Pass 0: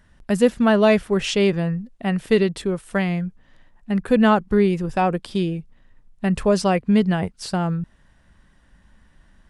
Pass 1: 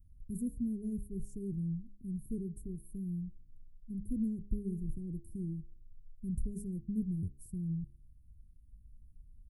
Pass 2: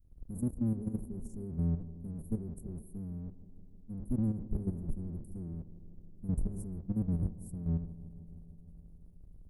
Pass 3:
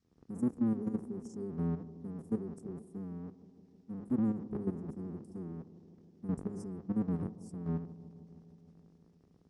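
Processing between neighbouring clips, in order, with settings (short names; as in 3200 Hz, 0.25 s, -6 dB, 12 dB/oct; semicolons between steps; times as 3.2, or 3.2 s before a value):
inverse Chebyshev band-stop 740–4000 Hz, stop band 70 dB; comb 2.6 ms, depth 69%; de-hum 68.05 Hz, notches 7; gain -4.5 dB
octaver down 1 oct, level -1 dB; level quantiser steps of 11 dB; analogue delay 0.156 s, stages 1024, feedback 77%, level -16.5 dB; gain +4 dB
speaker cabinet 290–6500 Hz, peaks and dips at 320 Hz -3 dB, 590 Hz -8 dB, 1200 Hz +5 dB, 1800 Hz +4 dB, 5400 Hz +6 dB; gain +8.5 dB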